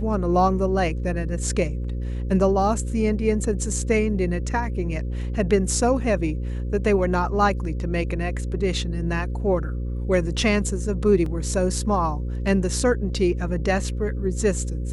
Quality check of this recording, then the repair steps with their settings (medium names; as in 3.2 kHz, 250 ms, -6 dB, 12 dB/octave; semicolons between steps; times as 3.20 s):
buzz 60 Hz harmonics 9 -27 dBFS
11.26 s: dropout 3.1 ms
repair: de-hum 60 Hz, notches 9; interpolate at 11.26 s, 3.1 ms